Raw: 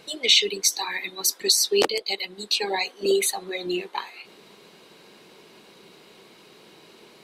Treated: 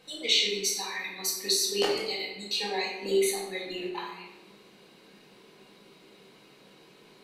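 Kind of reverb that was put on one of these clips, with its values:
rectangular room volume 400 cubic metres, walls mixed, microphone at 2 metres
level −10.5 dB

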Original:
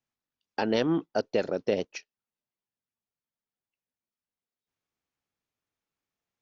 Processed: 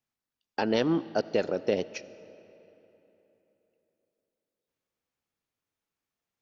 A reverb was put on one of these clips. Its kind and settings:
comb and all-pass reverb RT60 3.5 s, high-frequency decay 0.7×, pre-delay 30 ms, DRR 17 dB

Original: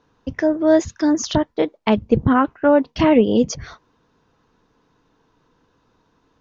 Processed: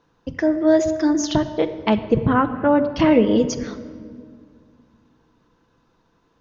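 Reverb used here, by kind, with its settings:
rectangular room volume 3,600 cubic metres, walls mixed, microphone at 0.77 metres
level −1.5 dB

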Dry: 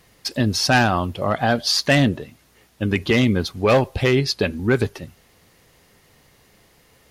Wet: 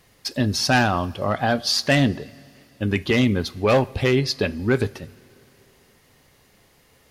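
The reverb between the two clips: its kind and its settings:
coupled-rooms reverb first 0.34 s, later 2.9 s, from −17 dB, DRR 15 dB
level −2 dB

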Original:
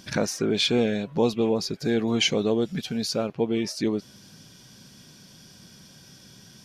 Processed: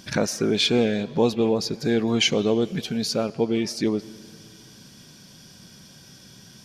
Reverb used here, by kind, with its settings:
comb and all-pass reverb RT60 2.5 s, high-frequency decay 0.9×, pre-delay 60 ms, DRR 20 dB
level +2 dB

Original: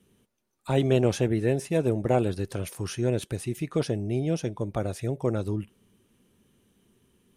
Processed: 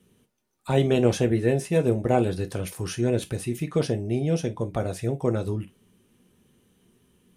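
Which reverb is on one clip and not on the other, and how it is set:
reverb whose tail is shaped and stops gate 80 ms falling, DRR 7 dB
level +1.5 dB

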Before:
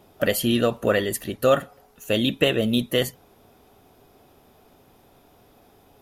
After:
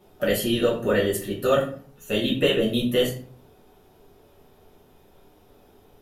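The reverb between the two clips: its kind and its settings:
rectangular room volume 35 cubic metres, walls mixed, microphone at 0.99 metres
level −7.5 dB

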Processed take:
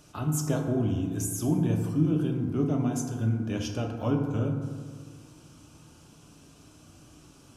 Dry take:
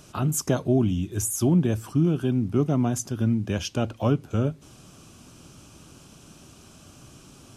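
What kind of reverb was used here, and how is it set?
feedback delay network reverb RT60 1.8 s, low-frequency decay 1×, high-frequency decay 0.35×, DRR 1.5 dB
level −7 dB

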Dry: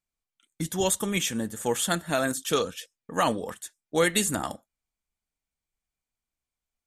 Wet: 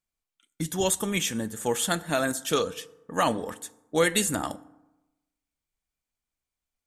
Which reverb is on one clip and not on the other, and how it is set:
feedback delay network reverb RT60 1 s, low-frequency decay 1.05×, high-frequency decay 0.5×, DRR 16.5 dB

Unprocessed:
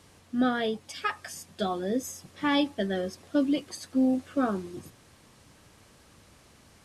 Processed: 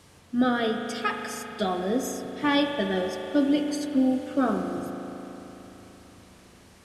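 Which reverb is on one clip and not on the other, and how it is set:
spring reverb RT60 3.8 s, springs 37 ms, chirp 20 ms, DRR 4 dB
level +2 dB

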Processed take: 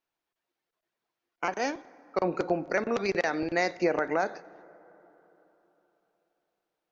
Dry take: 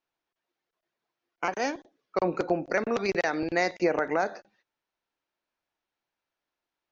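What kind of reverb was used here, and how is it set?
dense smooth reverb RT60 3.8 s, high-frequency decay 0.35×, DRR 20 dB
level −1 dB

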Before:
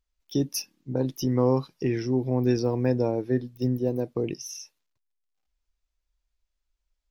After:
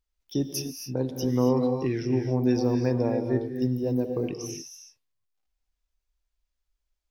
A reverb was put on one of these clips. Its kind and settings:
reverb whose tail is shaped and stops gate 300 ms rising, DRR 5 dB
level −2 dB

